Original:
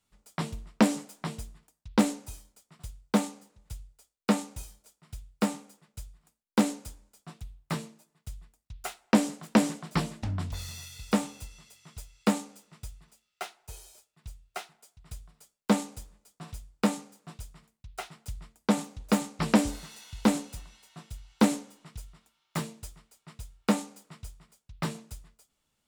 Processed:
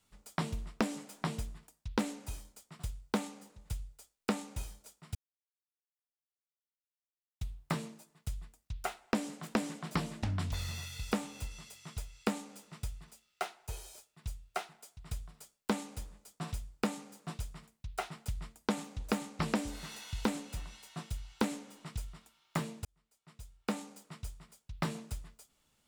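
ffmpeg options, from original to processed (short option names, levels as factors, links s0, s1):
-filter_complex "[0:a]asplit=4[s0][s1][s2][s3];[s0]atrim=end=5.15,asetpts=PTS-STARTPTS,afade=t=out:st=5.146:d=0.004:c=hsin[s4];[s1]atrim=start=5.15:end=7.41,asetpts=PTS-STARTPTS,volume=0[s5];[s2]atrim=start=7.41:end=22.85,asetpts=PTS-STARTPTS,afade=t=in:d=0.004:c=hsin,afade=t=out:st=15.436:d=0.004:c=hsin[s6];[s3]atrim=start=22.85,asetpts=PTS-STARTPTS,afade=t=in:d=2.05[s7];[s4][s5][s6][s7]concat=n=4:v=0:a=1,acrossover=split=1500|3400[s8][s9][s10];[s8]acompressor=threshold=0.0158:ratio=4[s11];[s9]acompressor=threshold=0.00355:ratio=4[s12];[s10]acompressor=threshold=0.00224:ratio=4[s13];[s11][s12][s13]amix=inputs=3:normalize=0,volume=1.58"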